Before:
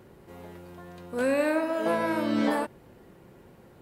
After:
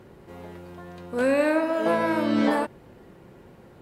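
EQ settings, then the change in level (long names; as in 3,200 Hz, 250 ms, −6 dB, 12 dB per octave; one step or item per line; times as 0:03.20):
high-shelf EQ 8,900 Hz −8 dB
+3.5 dB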